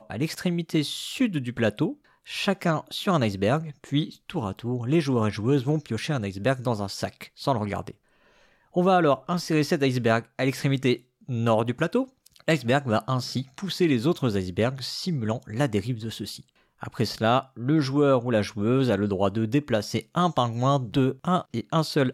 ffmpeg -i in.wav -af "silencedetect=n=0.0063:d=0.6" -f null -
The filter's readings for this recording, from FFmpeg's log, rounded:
silence_start: 7.91
silence_end: 8.74 | silence_duration: 0.83